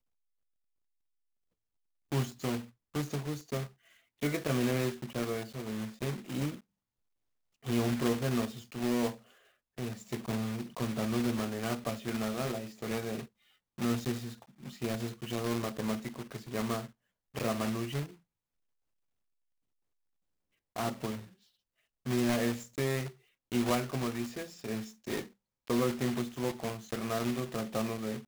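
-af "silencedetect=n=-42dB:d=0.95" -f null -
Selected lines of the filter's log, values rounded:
silence_start: 0.00
silence_end: 2.12 | silence_duration: 2.12
silence_start: 6.57
silence_end: 7.65 | silence_duration: 1.08
silence_start: 18.05
silence_end: 20.76 | silence_duration: 2.71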